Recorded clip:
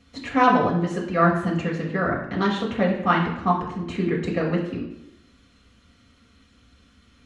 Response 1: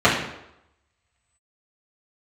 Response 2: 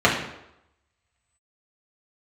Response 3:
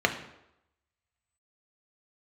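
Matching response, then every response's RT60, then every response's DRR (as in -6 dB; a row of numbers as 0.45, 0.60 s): 2; 0.85, 0.85, 0.85 s; -10.0, -5.5, 4.0 dB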